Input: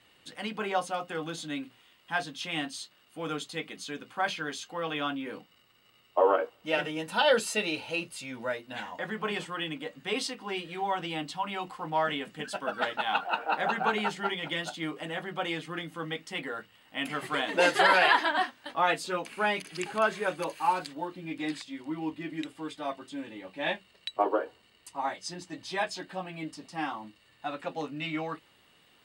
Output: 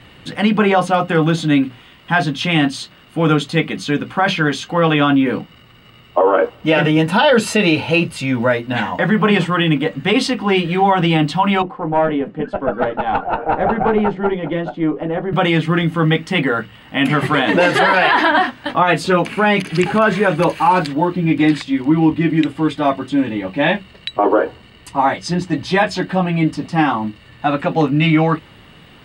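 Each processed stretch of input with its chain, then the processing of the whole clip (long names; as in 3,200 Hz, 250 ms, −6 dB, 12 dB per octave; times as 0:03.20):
0:11.62–0:15.33: resonant band-pass 440 Hz, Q 1.1 + tube saturation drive 24 dB, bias 0.3
whole clip: bass and treble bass +11 dB, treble −10 dB; boost into a limiter +21.5 dB; level −3.5 dB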